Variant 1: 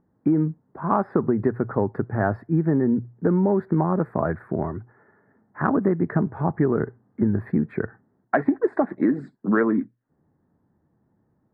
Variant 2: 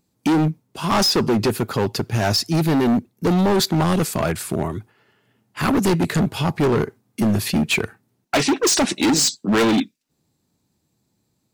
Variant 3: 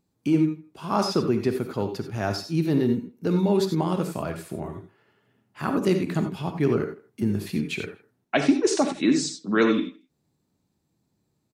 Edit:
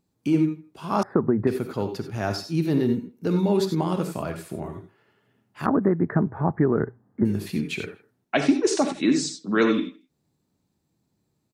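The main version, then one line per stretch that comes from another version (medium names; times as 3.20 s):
3
1.03–1.47 s: from 1
5.66–7.25 s: from 1
not used: 2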